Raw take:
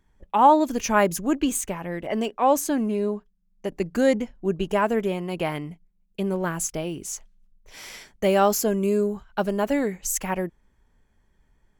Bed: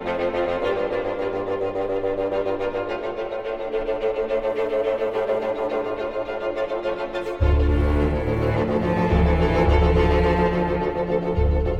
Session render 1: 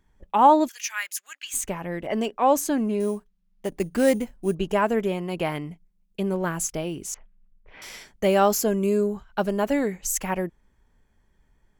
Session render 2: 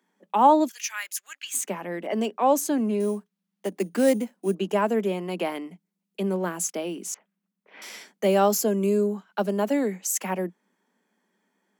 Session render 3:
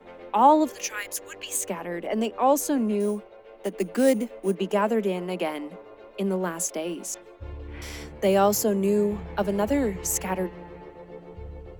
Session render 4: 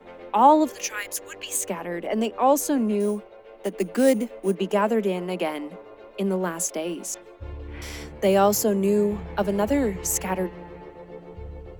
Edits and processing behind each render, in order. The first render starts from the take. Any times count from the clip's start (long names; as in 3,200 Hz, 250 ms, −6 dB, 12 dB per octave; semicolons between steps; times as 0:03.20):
0:00.68–0:01.54: Chebyshev high-pass filter 1,800 Hz, order 3; 0:03.00–0:04.55: sample-rate reduction 9,400 Hz; 0:07.14–0:07.82: low-pass filter 2,600 Hz 24 dB per octave
Butterworth high-pass 180 Hz 96 dB per octave; dynamic equaliser 1,700 Hz, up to −4 dB, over −34 dBFS, Q 0.82
mix in bed −20 dB
level +1.5 dB